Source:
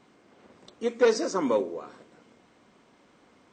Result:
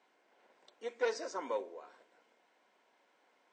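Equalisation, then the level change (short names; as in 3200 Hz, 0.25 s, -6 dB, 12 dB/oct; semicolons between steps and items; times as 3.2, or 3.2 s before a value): HPF 670 Hz 12 dB/oct; high shelf 3300 Hz -8.5 dB; notch 1200 Hz, Q 5.4; -5.5 dB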